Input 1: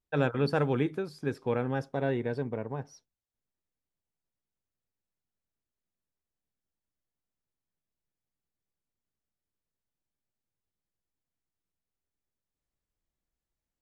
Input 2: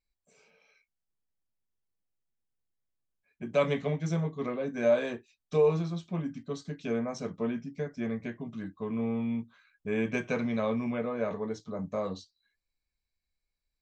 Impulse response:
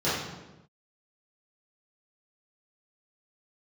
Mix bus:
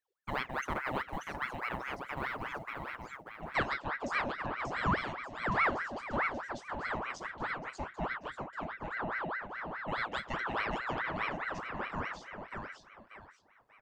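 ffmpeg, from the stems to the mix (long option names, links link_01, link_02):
-filter_complex "[0:a]highpass=140,acrusher=bits=8:mode=log:mix=0:aa=0.000001,adelay=150,volume=-5.5dB,asplit=2[link_01][link_02];[link_02]volume=-5.5dB[link_03];[1:a]volume=-3.5dB,asplit=2[link_04][link_05];[link_05]volume=-4dB[link_06];[link_03][link_06]amix=inputs=2:normalize=0,aecho=0:1:587|1174|1761|2348:1|0.31|0.0961|0.0298[link_07];[link_01][link_04][link_07]amix=inputs=3:normalize=0,aeval=exprs='val(0)*sin(2*PI*1100*n/s+1100*0.65/4.8*sin(2*PI*4.8*n/s))':channel_layout=same"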